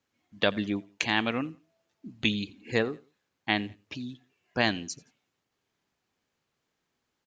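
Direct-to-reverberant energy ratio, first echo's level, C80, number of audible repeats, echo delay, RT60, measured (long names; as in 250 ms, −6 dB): no reverb audible, −23.0 dB, no reverb audible, 2, 86 ms, no reverb audible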